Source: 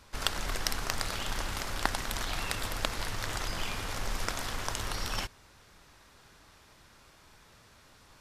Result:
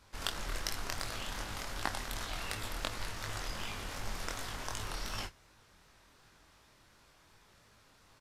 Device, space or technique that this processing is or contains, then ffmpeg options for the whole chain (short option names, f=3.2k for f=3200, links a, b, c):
double-tracked vocal: -filter_complex "[0:a]asplit=2[a][b];[b]adelay=28,volume=-13dB[c];[a][c]amix=inputs=2:normalize=0,flanger=delay=18.5:depth=6.4:speed=2.7,volume=-2.5dB"